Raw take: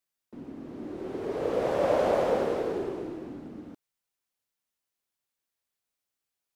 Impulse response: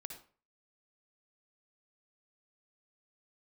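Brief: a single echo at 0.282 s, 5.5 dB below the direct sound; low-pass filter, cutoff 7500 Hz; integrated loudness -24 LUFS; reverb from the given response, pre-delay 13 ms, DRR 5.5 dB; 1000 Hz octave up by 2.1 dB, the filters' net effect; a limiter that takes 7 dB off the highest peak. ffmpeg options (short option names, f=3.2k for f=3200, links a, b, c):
-filter_complex "[0:a]lowpass=7.5k,equalizer=f=1k:t=o:g=3,alimiter=limit=-19.5dB:level=0:latency=1,aecho=1:1:282:0.531,asplit=2[a][b];[1:a]atrim=start_sample=2205,adelay=13[c];[b][c]afir=irnorm=-1:irlink=0,volume=-1.5dB[d];[a][d]amix=inputs=2:normalize=0,volume=5dB"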